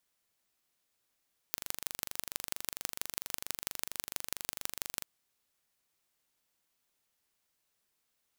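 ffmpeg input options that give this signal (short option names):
-f lavfi -i "aevalsrc='0.562*eq(mod(n,1807),0)*(0.5+0.5*eq(mod(n,7228),0))':d=3.51:s=44100"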